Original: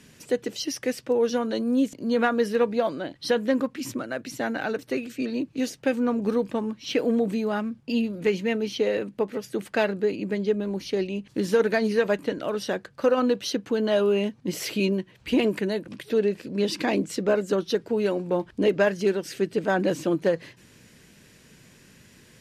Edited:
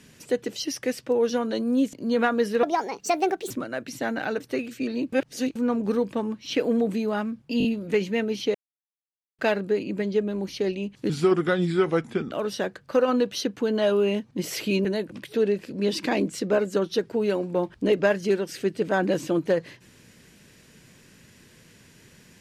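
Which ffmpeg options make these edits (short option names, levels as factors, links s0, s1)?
-filter_complex "[0:a]asplit=13[s0][s1][s2][s3][s4][s5][s6][s7][s8][s9][s10][s11][s12];[s0]atrim=end=2.634[s13];[s1]atrim=start=2.63:end=3.89,asetpts=PTS-STARTPTS,asetrate=63504,aresample=44100[s14];[s2]atrim=start=3.886:end=5.512[s15];[s3]atrim=start=5.508:end=5.942,asetpts=PTS-STARTPTS,areverse[s16];[s4]atrim=start=5.938:end=7.992[s17];[s5]atrim=start=7.968:end=7.992[s18];[s6]atrim=start=7.968:end=7.992[s19];[s7]atrim=start=7.968:end=8.87,asetpts=PTS-STARTPTS,afade=t=out:st=0.898:d=0.004:c=hsin[s20];[s8]atrim=start=8.87:end=9.71,asetpts=PTS-STARTPTS,volume=0[s21];[s9]atrim=start=9.71:end=11.424,asetpts=PTS-STARTPTS,afade=t=in:d=0.004:c=hsin[s22];[s10]atrim=start=11.42:end=12.41,asetpts=PTS-STARTPTS,asetrate=35721,aresample=44100[s23];[s11]atrim=start=12.406:end=14.942[s24];[s12]atrim=start=15.608[s25];[s13][s14]acrossfade=d=0.004:c1=hsin:c2=hsin[s26];[s26][s15]acrossfade=d=0.004:c1=hsin:c2=hsin[s27];[s27][s16]acrossfade=d=0.004:c1=hsin:c2=hsin[s28];[s28][s17]acrossfade=d=0.004:c1=hsin:c2=hsin[s29];[s29][s18]acrossfade=d=0.004:c1=hsin:c2=hsin[s30];[s30][s19]acrossfade=d=0.004:c1=hsin:c2=hsin[s31];[s20][s21][s22]concat=n=3:v=0:a=1[s32];[s31][s32]acrossfade=d=0.004:c1=hsin:c2=hsin[s33];[s33][s23]acrossfade=d=0.004:c1=hsin:c2=hsin[s34];[s34][s24]acrossfade=d=0.004:c1=hsin:c2=hsin[s35];[s35][s25]acrossfade=d=0.004:c1=hsin:c2=hsin"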